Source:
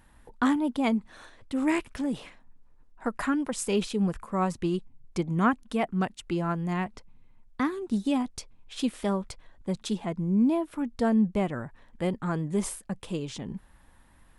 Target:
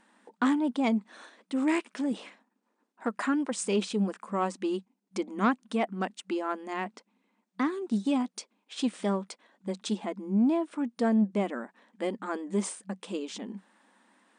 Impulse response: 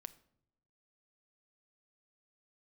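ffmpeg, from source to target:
-af "asoftclip=type=tanh:threshold=-16dB,afftfilt=real='re*between(b*sr/4096,190,9600)':imag='im*between(b*sr/4096,190,9600)':win_size=4096:overlap=0.75"

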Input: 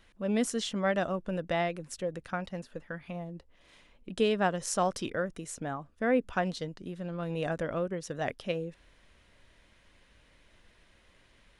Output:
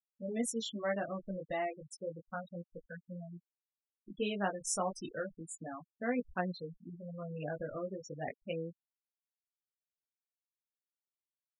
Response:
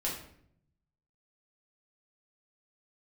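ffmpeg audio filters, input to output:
-af "flanger=delay=16.5:depth=4:speed=0.32,aemphasis=mode=production:type=cd,afftfilt=real='re*gte(hypot(re,im),0.0282)':imag='im*gte(hypot(re,im),0.0282)':win_size=1024:overlap=0.75,volume=-3.5dB"

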